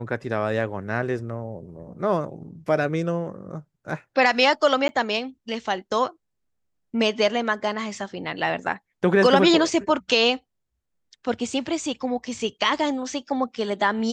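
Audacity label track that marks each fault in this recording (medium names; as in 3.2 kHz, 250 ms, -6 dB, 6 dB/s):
4.880000	4.890000	dropout 10 ms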